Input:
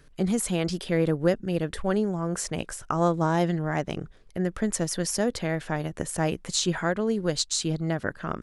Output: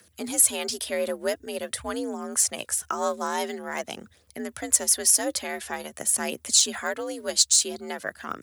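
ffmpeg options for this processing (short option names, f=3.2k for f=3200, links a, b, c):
-af "aphaser=in_gain=1:out_gain=1:delay=4.3:decay=0.39:speed=0.47:type=triangular,afreqshift=60,aemphasis=mode=production:type=riaa,volume=-2.5dB"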